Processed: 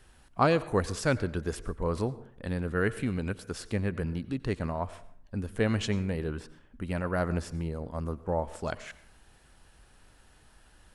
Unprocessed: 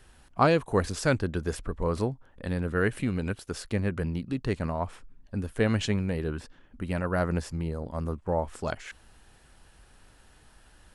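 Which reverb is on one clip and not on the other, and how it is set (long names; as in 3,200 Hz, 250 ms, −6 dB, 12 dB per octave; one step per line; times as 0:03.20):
dense smooth reverb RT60 0.63 s, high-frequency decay 0.55×, pre-delay 80 ms, DRR 16.5 dB
level −2 dB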